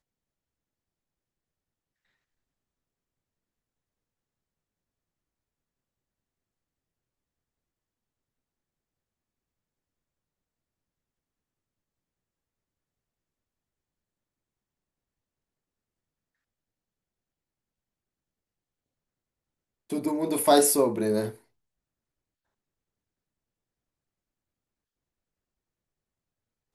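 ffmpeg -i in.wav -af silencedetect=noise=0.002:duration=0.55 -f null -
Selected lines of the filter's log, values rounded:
silence_start: 0.00
silence_end: 19.90 | silence_duration: 19.90
silence_start: 21.42
silence_end: 26.75 | silence_duration: 5.33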